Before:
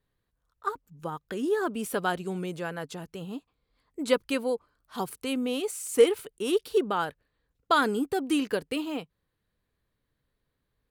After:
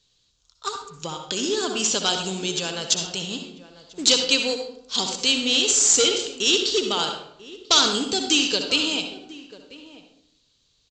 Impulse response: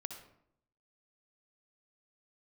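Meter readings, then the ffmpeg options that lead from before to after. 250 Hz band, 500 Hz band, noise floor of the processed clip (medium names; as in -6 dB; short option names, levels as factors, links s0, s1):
+1.5 dB, 0.0 dB, -66 dBFS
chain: -filter_complex "[0:a]asplit=2[s0][s1];[s1]acompressor=threshold=0.0178:ratio=6,volume=0.891[s2];[s0][s2]amix=inputs=2:normalize=0,asoftclip=type=hard:threshold=0.168,asplit=2[s3][s4];[s4]adelay=991.3,volume=0.158,highshelf=f=4000:g=-22.3[s5];[s3][s5]amix=inputs=2:normalize=0,aexciter=amount=11:drive=6.7:freq=2800,aresample=16000,acrusher=bits=4:mode=log:mix=0:aa=0.000001,aresample=44100[s6];[1:a]atrim=start_sample=2205[s7];[s6][s7]afir=irnorm=-1:irlink=0,volume=1.12"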